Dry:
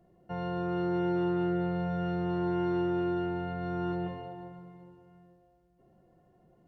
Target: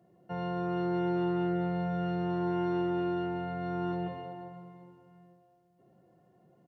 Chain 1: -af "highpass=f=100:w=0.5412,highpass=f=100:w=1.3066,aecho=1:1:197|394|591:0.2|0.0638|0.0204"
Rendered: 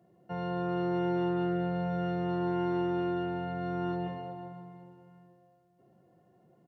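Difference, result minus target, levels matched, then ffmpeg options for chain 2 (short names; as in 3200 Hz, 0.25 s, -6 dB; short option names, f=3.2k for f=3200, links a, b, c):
echo 88 ms late
-af "highpass=f=100:w=0.5412,highpass=f=100:w=1.3066,aecho=1:1:109|218|327:0.2|0.0638|0.0204"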